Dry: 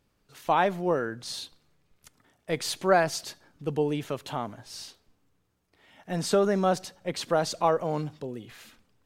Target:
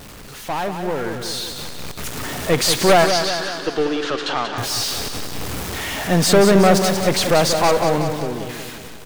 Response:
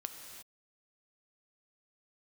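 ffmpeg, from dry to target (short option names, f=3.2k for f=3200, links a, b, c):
-filter_complex "[0:a]aeval=exprs='val(0)+0.5*0.0211*sgn(val(0))':c=same,asettb=1/sr,asplit=3[a][b][c];[a]atrim=end=3.044[d];[b]atrim=start=3.04:end=4.58,asetpts=PTS-STARTPTS,afade=t=in:d=0.004:c=qsin,afade=t=out:st=1.536:d=0.004:c=qsin,highpass=f=340:w=0.5412,highpass=f=340:w=1.3066,equalizer=f=440:t=q:w=4:g=-5,equalizer=f=620:t=q:w=4:g=-8,equalizer=f=920:t=q:w=4:g=-5,equalizer=f=1.5k:t=q:w=4:g=4,equalizer=f=2.2k:t=q:w=4:g=-6,lowpass=f=5.3k:w=0.5412,lowpass=f=5.3k:w=1.3066[e];[c]atrim=start=4.576[f];[d][e]acrossfade=d=0.004:c1=hsin:c2=qsin[g];[g][f]acrossfade=d=0.004:c1=qsin:c2=hsin,aeval=exprs='(tanh(14.1*val(0)+0.55)-tanh(0.55))/14.1':c=same,dynaudnorm=f=310:g=11:m=11.5dB,aecho=1:1:185|370|555|740|925|1110|1295:0.422|0.228|0.123|0.0664|0.0359|0.0194|0.0105,volume=3dB"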